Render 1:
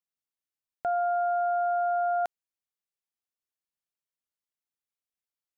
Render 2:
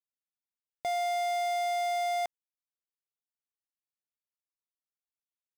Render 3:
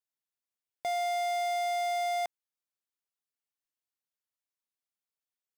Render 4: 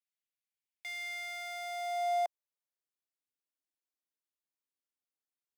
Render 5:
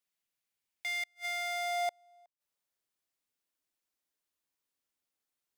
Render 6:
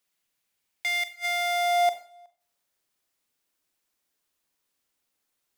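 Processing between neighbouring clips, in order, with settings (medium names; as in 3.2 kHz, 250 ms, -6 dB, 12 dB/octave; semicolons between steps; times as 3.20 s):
waveshaping leveller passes 5; trim -6 dB
bass shelf 220 Hz -6.5 dB
high-pass sweep 2.2 kHz -> 280 Hz, 0.97–3.14 s; trim -6.5 dB
inverted gate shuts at -32 dBFS, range -37 dB; trim +6 dB
Schroeder reverb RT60 0.44 s, combs from 30 ms, DRR 10 dB; trim +8.5 dB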